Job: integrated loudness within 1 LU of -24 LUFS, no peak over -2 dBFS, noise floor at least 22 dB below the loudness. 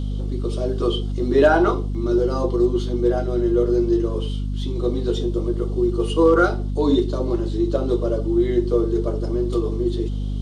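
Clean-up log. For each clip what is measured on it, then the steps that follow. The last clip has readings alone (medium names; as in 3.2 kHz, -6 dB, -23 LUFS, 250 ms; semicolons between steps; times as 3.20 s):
hum 50 Hz; highest harmonic 250 Hz; hum level -22 dBFS; loudness -21.0 LUFS; peak level -3.5 dBFS; loudness target -24.0 LUFS
-> hum notches 50/100/150/200/250 Hz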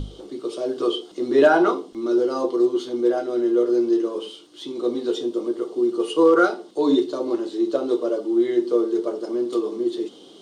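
hum not found; loudness -22.0 LUFS; peak level -4.5 dBFS; loudness target -24.0 LUFS
-> trim -2 dB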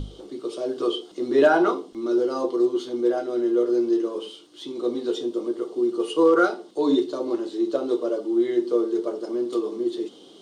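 loudness -24.0 LUFS; peak level -6.5 dBFS; noise floor -48 dBFS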